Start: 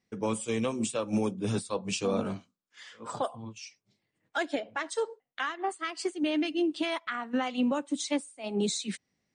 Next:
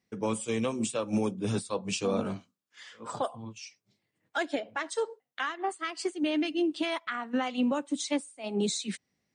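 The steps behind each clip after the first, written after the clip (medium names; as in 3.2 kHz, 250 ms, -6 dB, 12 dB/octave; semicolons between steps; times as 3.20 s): high-pass 42 Hz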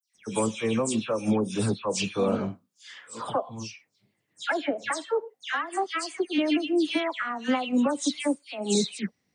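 phase dispersion lows, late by 150 ms, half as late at 2.8 kHz; trim +4 dB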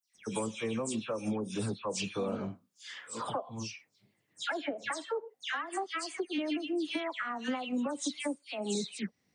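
compression 2.5:1, threshold -35 dBFS, peak gain reduction 10.5 dB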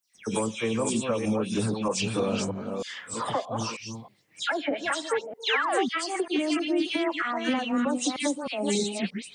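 chunks repeated in reverse 314 ms, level -5 dB; painted sound fall, 5.46–5.89 s, 210–4400 Hz -34 dBFS; trim +6.5 dB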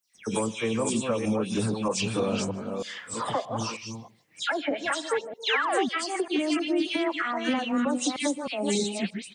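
delay 154 ms -24 dB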